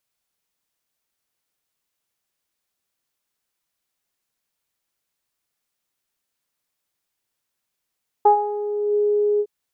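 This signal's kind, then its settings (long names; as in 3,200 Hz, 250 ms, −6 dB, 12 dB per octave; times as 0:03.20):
subtractive voice saw G#4 24 dB per octave, low-pass 460 Hz, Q 6, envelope 1 octave, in 0.69 s, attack 8.5 ms, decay 0.10 s, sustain −11.5 dB, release 0.06 s, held 1.15 s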